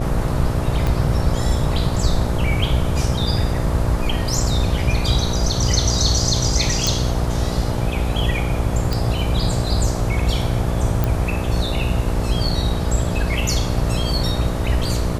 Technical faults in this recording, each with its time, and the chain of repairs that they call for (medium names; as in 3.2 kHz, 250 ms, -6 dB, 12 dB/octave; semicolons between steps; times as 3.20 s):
buzz 60 Hz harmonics 11 -24 dBFS
0.87 s: pop
6.87 s: pop
8.93 s: pop
11.04 s: pop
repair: de-click; de-hum 60 Hz, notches 11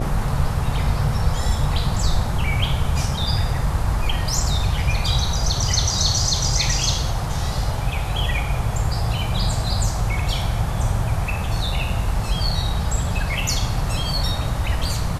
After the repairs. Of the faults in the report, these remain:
0.87 s: pop